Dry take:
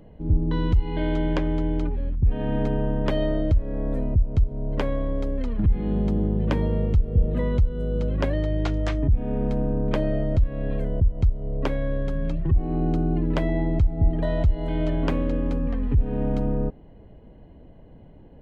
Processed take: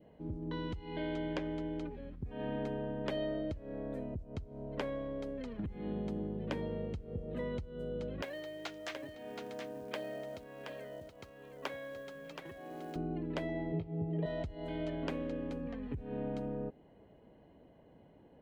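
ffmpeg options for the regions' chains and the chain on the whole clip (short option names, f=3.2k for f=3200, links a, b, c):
-filter_complex "[0:a]asettb=1/sr,asplit=3[a][b][c];[a]atrim=end=8.224[d];[b]atrim=start=8.22:end=12.96,asetpts=PTS-STARTPTS,afade=t=in:d=0.004:c=qsin,afade=t=out:st=4.736:d=0.004:c=qsin,highpass=f=1k:p=1,acrusher=bits=7:mode=log:mix=0:aa=0.000001,aecho=1:1:724:0.447,atrim=end_sample=209034[e];[c]atrim=start=12.956[f];[d][e]acrossfade=d=0.004:c1=hsin:c2=qsin[g];[g][f]acrossfade=d=0.004:c1=qsin:c2=hsin,asettb=1/sr,asplit=3[h][i][j];[h]atrim=end=13.724[k];[i]atrim=start=13.72:end=14.26,asetpts=PTS-STARTPTS,afade=t=in:d=0.004:c=qsin,afade=t=out:st=0.536:d=0.004:c=qsin,highpass=110,equalizer=f=160:t=q:w=4:g=10,equalizer=f=240:t=q:w=4:g=-7,equalizer=f=430:t=q:w=4:g=9,equalizer=f=1.5k:t=q:w=4:g=-9,lowpass=f=3.6k:w=0.5412,lowpass=f=3.6k:w=1.3066,asplit=2[l][m];[m]adelay=19,volume=-7dB[n];[l][n]amix=inputs=2:normalize=0,atrim=end_sample=23814[o];[j]atrim=start=14.256[p];[k][o]acrossfade=d=0.004:c1=hsin:c2=qsin[q];[q][p]acrossfade=d=0.004:c1=qsin:c2=hsin,acompressor=threshold=-23dB:ratio=2,adynamicequalizer=threshold=0.00316:dfrequency=1100:dqfactor=1.8:tfrequency=1100:tqfactor=1.8:attack=5:release=100:ratio=0.375:range=2.5:mode=cutabove:tftype=bell,highpass=f=340:p=1,volume=-5.5dB"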